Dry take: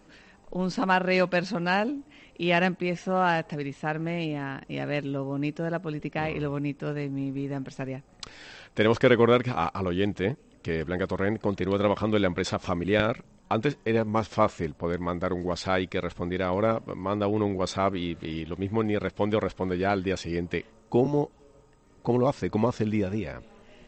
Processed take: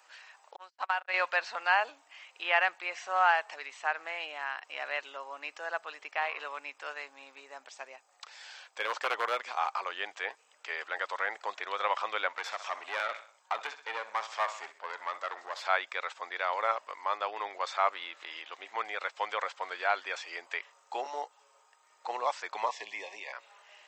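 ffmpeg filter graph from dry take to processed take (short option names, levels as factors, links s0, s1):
-filter_complex "[0:a]asettb=1/sr,asplit=3[s0][s1][s2];[s0]atrim=end=0.564[s3];[s1]atrim=start=0.56:end=1.14,asetpts=PTS-STARTPTS,afade=t=in:d=0.004:c=qsin,afade=t=out:st=0.576:d=0.004:c=qsin,agate=range=0.00282:threshold=0.0562:ratio=16:release=100:detection=peak,highpass=f=240:p=1,acompressor=threshold=0.0562:ratio=6:attack=3.2:release=140:knee=1:detection=peak[s4];[s2]atrim=start=1.136[s5];[s3][s4]acrossfade=d=0.004:c1=hsin:c2=qsin[s6];[s6][s5]acrossfade=d=0.004:c1=qsin:c2=hsin,asettb=1/sr,asplit=3[s7][s8][s9];[s7]atrim=end=7.404[s10];[s8]atrim=start=7.4:end=9.69,asetpts=PTS-STARTPTS,afade=t=in:d=0.004:c=qsin,afade=t=out:st=2.286:d=0.004:c=qsin,equalizer=f=1900:t=o:w=2.3:g=-6,aeval=exprs='0.168*(abs(mod(val(0)/0.168+3,4)-2)-1)':c=same[s11];[s9]atrim=start=9.686[s12];[s10][s11]acrossfade=d=0.004:c1=hsin:c2=qsin[s13];[s13][s12]acrossfade=d=0.004:c1=qsin:c2=hsin,asettb=1/sr,asplit=3[s14][s15][s16];[s14]atrim=end=12.284[s17];[s15]atrim=start=12.28:end=15.66,asetpts=PTS-STARTPTS,afade=t=in:d=0.004:c=qsin,afade=t=out:st=3.376:d=0.004:c=qsin,aecho=1:1:64|128|192|256:0.158|0.0713|0.0321|0.0144,atrim=end_sample=149058,aeval=exprs='(tanh(12.6*val(0)+0.45)-tanh(0.45))/12.6':c=same[s18];[s16]atrim=start=15.656[s19];[s17][s18]acrossfade=d=0.004:c1=hsin:c2=qsin[s20];[s20][s19]acrossfade=d=0.004:c1=qsin:c2=hsin,asettb=1/sr,asplit=3[s21][s22][s23];[s21]atrim=end=22.684[s24];[s22]atrim=start=22.68:end=23.33,asetpts=PTS-STARTPTS,afade=t=in:d=0.004:c=qsin,afade=t=out:st=0.646:d=0.004:c=qsin,asuperstop=centerf=1400:order=12:qfactor=2.5,afreqshift=-19[s25];[s23]atrim=start=23.326[s26];[s24][s25]acrossfade=d=0.004:c1=hsin:c2=qsin[s27];[s27][s26]acrossfade=d=0.004:c1=qsin:c2=hsin,highpass=f=800:w=0.5412,highpass=f=800:w=1.3066,acrossover=split=2700[s28][s29];[s29]acompressor=threshold=0.00501:ratio=4:attack=1:release=60[s30];[s28][s30]amix=inputs=2:normalize=0,volume=1.33"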